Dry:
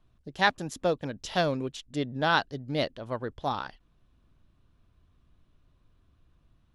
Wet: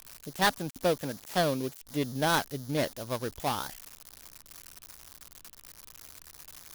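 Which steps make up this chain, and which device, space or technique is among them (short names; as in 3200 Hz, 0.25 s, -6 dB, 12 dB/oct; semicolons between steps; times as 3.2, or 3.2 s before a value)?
1.02–1.78 HPF 96 Hz 6 dB/oct; budget class-D amplifier (switching dead time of 0.19 ms; switching spikes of -26.5 dBFS)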